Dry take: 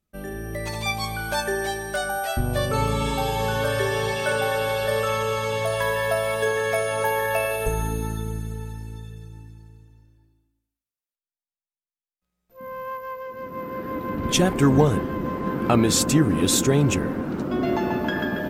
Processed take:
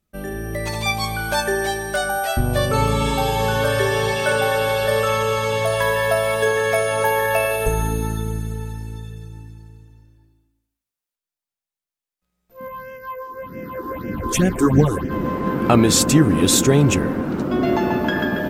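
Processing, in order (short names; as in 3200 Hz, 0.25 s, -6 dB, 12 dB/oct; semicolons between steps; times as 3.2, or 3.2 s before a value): 12.67–15.1 phaser stages 6, 1.1 Hz -> 4 Hz, lowest notch 150–1100 Hz; gain +4.5 dB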